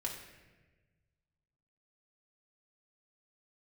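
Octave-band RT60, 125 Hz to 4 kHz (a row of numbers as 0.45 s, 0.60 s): 2.2 s, 1.7 s, 1.5 s, 1.1 s, 1.3 s, 0.90 s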